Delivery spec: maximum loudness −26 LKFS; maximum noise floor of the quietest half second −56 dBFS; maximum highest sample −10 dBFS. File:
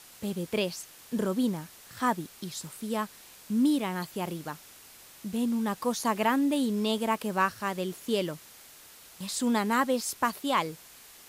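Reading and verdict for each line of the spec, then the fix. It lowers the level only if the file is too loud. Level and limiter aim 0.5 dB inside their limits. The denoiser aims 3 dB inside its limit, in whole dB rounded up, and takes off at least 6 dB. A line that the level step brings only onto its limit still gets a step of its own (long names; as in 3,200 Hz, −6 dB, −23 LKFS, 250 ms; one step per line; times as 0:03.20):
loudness −30.0 LKFS: in spec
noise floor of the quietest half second −52 dBFS: out of spec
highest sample −12.0 dBFS: in spec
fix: broadband denoise 7 dB, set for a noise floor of −52 dBFS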